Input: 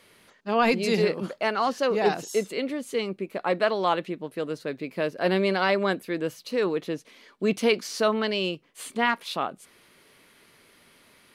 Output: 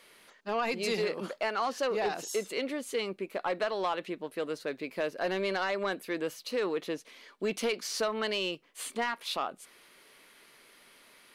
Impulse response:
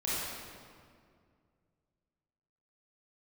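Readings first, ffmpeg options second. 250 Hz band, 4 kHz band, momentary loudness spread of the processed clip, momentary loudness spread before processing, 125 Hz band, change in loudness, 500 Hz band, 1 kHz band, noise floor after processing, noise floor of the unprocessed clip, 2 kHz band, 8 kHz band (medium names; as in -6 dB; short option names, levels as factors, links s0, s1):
-9.0 dB, -4.0 dB, 7 LU, 10 LU, -12.0 dB, -6.5 dB, -6.5 dB, -6.5 dB, -60 dBFS, -58 dBFS, -6.0 dB, -0.5 dB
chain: -af "equalizer=f=86:w=0.44:g=-13.5,acompressor=threshold=0.0562:ratio=6,asoftclip=type=tanh:threshold=0.0891"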